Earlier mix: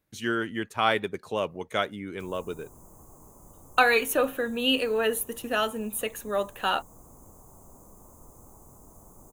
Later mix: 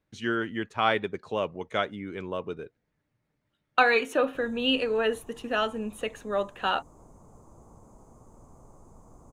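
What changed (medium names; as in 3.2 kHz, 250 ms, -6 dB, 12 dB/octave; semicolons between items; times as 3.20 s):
background: entry +2.15 s; master: add distance through air 96 m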